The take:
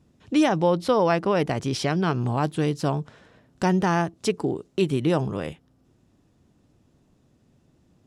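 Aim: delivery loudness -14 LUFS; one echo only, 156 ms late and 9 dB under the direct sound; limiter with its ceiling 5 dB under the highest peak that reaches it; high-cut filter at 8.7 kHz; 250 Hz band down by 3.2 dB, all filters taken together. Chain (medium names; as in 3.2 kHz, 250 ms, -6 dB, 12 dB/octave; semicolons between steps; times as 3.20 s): low-pass 8.7 kHz; peaking EQ 250 Hz -5 dB; peak limiter -15 dBFS; delay 156 ms -9 dB; trim +12.5 dB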